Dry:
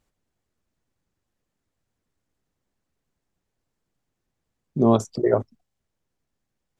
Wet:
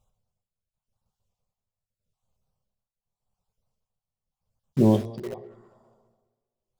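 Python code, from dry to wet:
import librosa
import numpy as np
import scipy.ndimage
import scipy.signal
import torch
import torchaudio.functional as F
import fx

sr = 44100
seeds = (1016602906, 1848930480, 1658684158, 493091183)

p1 = fx.spec_dropout(x, sr, seeds[0], share_pct=28)
p2 = fx.bass_treble(p1, sr, bass_db=3, treble_db=-3)
p3 = fx.rev_double_slope(p2, sr, seeds[1], early_s=0.56, late_s=2.0, knee_db=-18, drr_db=8.5)
p4 = p3 * (1.0 - 0.81 / 2.0 + 0.81 / 2.0 * np.cos(2.0 * np.pi * 0.85 * (np.arange(len(p3)) / sr)))
p5 = fx.env_phaser(p4, sr, low_hz=310.0, high_hz=1400.0, full_db=-32.0)
p6 = (np.mod(10.0 ** (32.0 / 20.0) * p5 + 1.0, 2.0) - 1.0) / 10.0 ** (32.0 / 20.0)
p7 = p5 + (p6 * librosa.db_to_amplitude(-10.0))
p8 = fx.echo_wet_lowpass(p7, sr, ms=200, feedback_pct=42, hz=3300.0, wet_db=-22.0)
y = fx.record_warp(p8, sr, rpm=33.33, depth_cents=100.0)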